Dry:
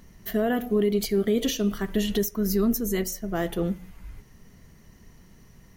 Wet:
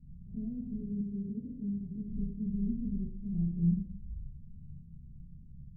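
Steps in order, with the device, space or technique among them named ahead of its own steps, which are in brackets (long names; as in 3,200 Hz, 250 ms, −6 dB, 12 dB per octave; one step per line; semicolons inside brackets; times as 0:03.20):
club heard from the street (brickwall limiter −20.5 dBFS, peak gain reduction 7 dB; low-pass filter 180 Hz 24 dB per octave; convolution reverb RT60 0.65 s, pre-delay 8 ms, DRR −8.5 dB)
0:01.01–0:02.10: high-pass filter 120 Hz 6 dB per octave
level −4 dB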